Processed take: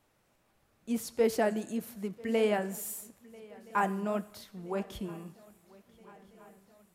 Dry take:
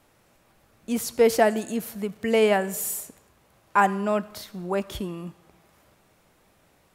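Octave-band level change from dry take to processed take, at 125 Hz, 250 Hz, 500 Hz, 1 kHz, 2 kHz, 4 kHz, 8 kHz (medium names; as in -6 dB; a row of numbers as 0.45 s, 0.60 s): -6.0 dB, -6.0 dB, -8.0 dB, -9.5 dB, -9.5 dB, -9.5 dB, -10.0 dB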